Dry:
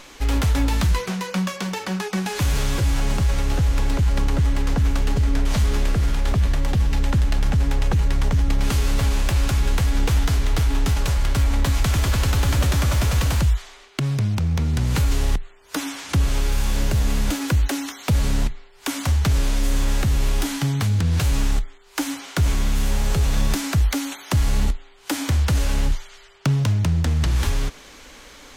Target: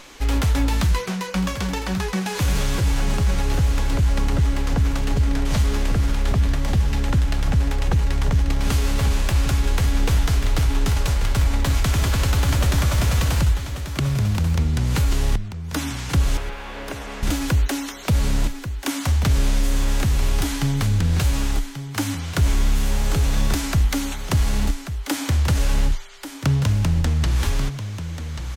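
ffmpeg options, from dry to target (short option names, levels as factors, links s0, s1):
-filter_complex "[0:a]asettb=1/sr,asplit=3[s0][s1][s2];[s0]atrim=end=16.374[s3];[s1]atrim=start=16.37:end=17.23,asetpts=PTS-STARTPTS,afade=t=in:d=0.004:c=qsin,afade=t=out:st=0.856:d=0.004:c=qsin,acrossover=split=320 3100:gain=0.126 1 0.0891[s4][s5][s6];[s4][s5][s6]amix=inputs=3:normalize=0[s7];[s2]atrim=start=17.226[s8];[s3][s7]acrossfade=d=0.004:c1=hsin:c2=qsin[s9];[s9][s8]acrossfade=d=0.004:c1=qsin:c2=hsin,asplit=2[s10][s11];[s11]aecho=0:1:1137:0.316[s12];[s10][s12]amix=inputs=2:normalize=0"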